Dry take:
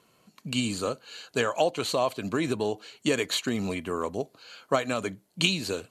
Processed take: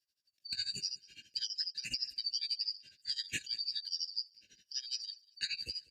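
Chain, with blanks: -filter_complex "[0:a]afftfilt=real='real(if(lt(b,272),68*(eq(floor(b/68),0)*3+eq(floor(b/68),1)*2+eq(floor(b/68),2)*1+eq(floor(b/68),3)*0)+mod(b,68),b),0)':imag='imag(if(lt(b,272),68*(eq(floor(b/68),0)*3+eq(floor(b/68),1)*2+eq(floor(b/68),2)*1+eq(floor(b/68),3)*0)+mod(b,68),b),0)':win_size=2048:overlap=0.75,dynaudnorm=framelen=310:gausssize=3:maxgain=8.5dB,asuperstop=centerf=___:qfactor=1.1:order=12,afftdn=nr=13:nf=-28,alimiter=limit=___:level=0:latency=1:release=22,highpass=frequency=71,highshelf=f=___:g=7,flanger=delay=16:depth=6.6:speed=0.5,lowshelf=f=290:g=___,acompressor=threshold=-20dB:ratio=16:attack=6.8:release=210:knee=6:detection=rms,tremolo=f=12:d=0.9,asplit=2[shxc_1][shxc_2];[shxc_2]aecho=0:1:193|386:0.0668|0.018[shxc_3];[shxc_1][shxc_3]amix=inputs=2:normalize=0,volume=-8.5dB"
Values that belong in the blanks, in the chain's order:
1000, -9dB, 3.3k, 3.5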